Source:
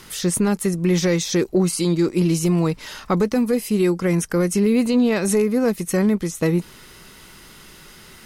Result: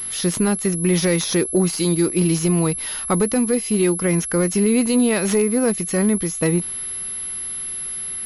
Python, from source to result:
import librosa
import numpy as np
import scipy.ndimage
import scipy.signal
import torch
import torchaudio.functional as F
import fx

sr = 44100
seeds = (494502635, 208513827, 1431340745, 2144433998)

y = fx.transient(x, sr, attack_db=-2, sustain_db=2, at=(5.63, 6.23))
y = fx.high_shelf(y, sr, hz=3800.0, db=8.5)
y = fx.pwm(y, sr, carrier_hz=11000.0)